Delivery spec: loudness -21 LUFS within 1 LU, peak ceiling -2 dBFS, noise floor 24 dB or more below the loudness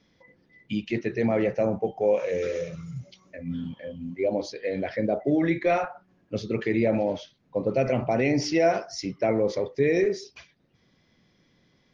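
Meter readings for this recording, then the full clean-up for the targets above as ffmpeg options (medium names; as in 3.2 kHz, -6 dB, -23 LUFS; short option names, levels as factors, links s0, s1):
loudness -26.5 LUFS; peak level -11.0 dBFS; loudness target -21.0 LUFS
-> -af "volume=1.88"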